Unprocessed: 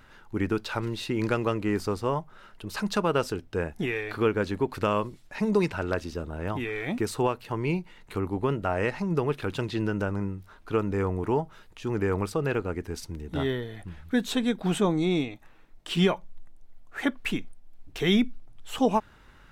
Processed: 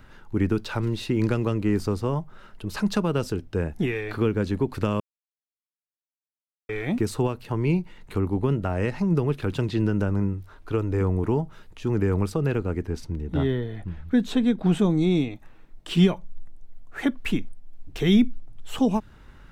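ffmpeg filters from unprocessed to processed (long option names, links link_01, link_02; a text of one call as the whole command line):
ffmpeg -i in.wav -filter_complex "[0:a]asettb=1/sr,asplit=3[link_01][link_02][link_03];[link_01]atrim=end=10.334[link_04];[link_02]atrim=start=10.33:end=11.01,asetpts=PTS-STARTPTS,afade=type=in:duration=0.004:curve=qsin,afade=type=out:start_time=0.676:duration=0.004:curve=qsin,equalizer=frequency=200:width_type=o:width=0.24:gain=-13[link_05];[link_03]atrim=start=11.006[link_06];[link_04][link_05]acrossfade=duration=0.004:curve1=hsin:curve2=qsin[link_07];[link_07][link_06]acrossfade=duration=0.004:curve1=qsin:curve2=hsin,asettb=1/sr,asplit=3[link_08][link_09][link_10];[link_08]atrim=end=12.834[link_11];[link_09]atrim=start=12.83:end=14.79,asetpts=PTS-STARTPTS,afade=type=in:duration=0.004:curve=qsin,afade=type=out:start_time=1.956:duration=0.004:curve=qsin,aemphasis=mode=reproduction:type=cd[link_12];[link_10]atrim=start=14.786[link_13];[link_11][link_12]acrossfade=duration=0.004:curve1=hsin:curve2=qsin[link_14];[link_14][link_13]acrossfade=duration=0.004:curve1=qsin:curve2=hsin,asplit=3[link_15][link_16][link_17];[link_15]atrim=end=5,asetpts=PTS-STARTPTS,afade=type=out:start_time=4.996:duration=0.004:curve=hsin[link_18];[link_16]atrim=start=5:end=6.69,asetpts=PTS-STARTPTS,volume=0[link_19];[link_17]atrim=start=6.69,asetpts=PTS-STARTPTS,afade=type=in:duration=0.004:curve=hsin[link_20];[link_18][link_19][link_20]concat=n=3:v=0:a=1,lowshelf=frequency=400:gain=7.5,acrossover=split=320|3000[link_21][link_22][link_23];[link_22]acompressor=threshold=-28dB:ratio=3[link_24];[link_21][link_24][link_23]amix=inputs=3:normalize=0" out.wav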